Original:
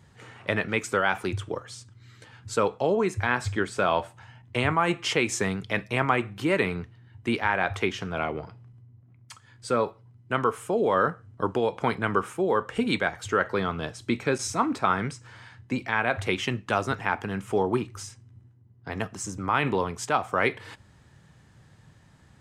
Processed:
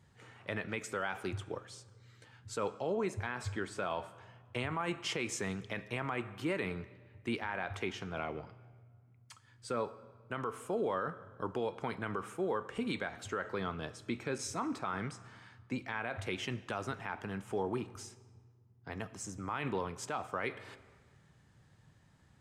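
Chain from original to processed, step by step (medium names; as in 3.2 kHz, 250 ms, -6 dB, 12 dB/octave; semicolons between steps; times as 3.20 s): algorithmic reverb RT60 1.6 s, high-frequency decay 0.8×, pre-delay 30 ms, DRR 18.5 dB; peak limiter -16 dBFS, peak gain reduction 8 dB; trim -9 dB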